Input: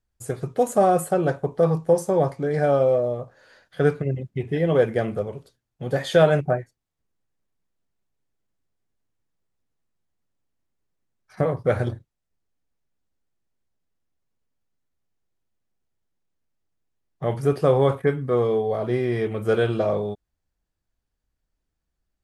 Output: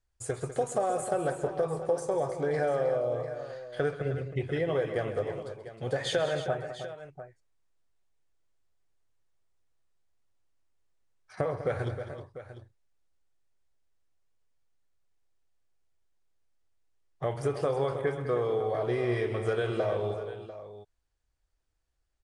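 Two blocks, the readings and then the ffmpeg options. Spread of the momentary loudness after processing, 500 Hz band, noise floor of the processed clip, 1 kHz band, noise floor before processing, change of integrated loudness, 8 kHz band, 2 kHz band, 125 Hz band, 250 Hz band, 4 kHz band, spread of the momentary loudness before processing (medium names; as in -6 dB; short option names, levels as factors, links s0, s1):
13 LU, -8.0 dB, -76 dBFS, -8.0 dB, -81 dBFS, -8.5 dB, no reading, -5.5 dB, -9.5 dB, -10.5 dB, -3.0 dB, 12 LU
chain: -filter_complex "[0:a]equalizer=f=200:w=1.3:g=-12,acompressor=threshold=0.0501:ratio=6,aresample=22050,aresample=44100,asplit=2[s0][s1];[s1]aecho=0:1:132|200|313|696:0.168|0.251|0.282|0.2[s2];[s0][s2]amix=inputs=2:normalize=0"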